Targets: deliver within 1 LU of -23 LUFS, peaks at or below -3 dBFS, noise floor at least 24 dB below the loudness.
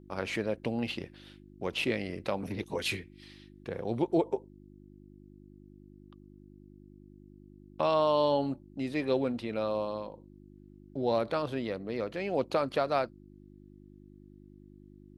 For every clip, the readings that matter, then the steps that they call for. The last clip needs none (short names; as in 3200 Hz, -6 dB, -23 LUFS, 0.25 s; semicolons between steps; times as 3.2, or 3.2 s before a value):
hum 50 Hz; harmonics up to 350 Hz; hum level -52 dBFS; loudness -32.0 LUFS; peak -14.0 dBFS; loudness target -23.0 LUFS
-> de-hum 50 Hz, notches 7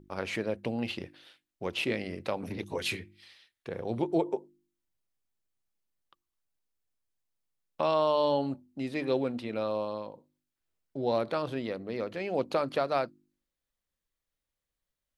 hum none; loudness -32.0 LUFS; peak -14.0 dBFS; loudness target -23.0 LUFS
-> gain +9 dB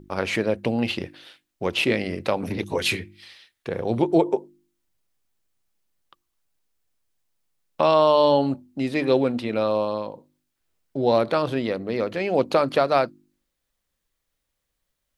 loudness -23.0 LUFS; peak -5.0 dBFS; noise floor -79 dBFS